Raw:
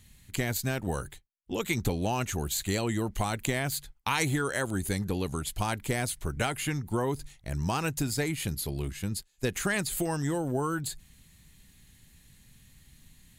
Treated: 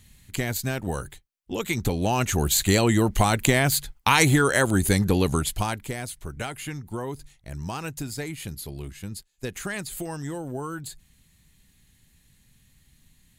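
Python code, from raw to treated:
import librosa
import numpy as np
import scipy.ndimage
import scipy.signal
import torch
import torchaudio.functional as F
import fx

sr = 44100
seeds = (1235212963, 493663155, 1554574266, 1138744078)

y = fx.gain(x, sr, db=fx.line((1.77, 2.5), (2.5, 9.5), (5.37, 9.5), (5.95, -3.0)))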